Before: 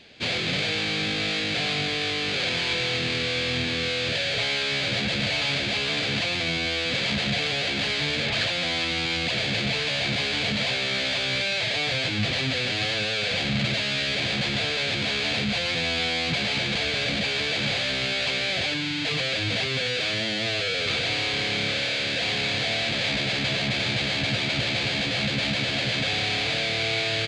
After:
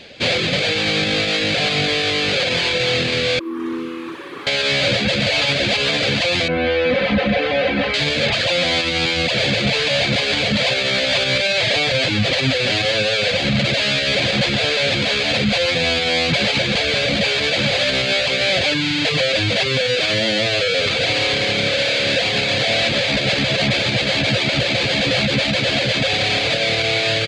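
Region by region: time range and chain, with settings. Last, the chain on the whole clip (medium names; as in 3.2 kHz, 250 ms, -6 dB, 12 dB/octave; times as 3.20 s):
3.39–4.47 s: one-bit comparator + two resonant band-passes 610 Hz, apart 1.8 oct + flutter echo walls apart 10.4 m, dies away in 0.97 s
6.48–7.94 s: low-pass 1.9 kHz + comb 3.9 ms, depth 64%
whole clip: reverb removal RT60 0.53 s; peaking EQ 540 Hz +8 dB 0.32 oct; loudness maximiser +18 dB; trim -8 dB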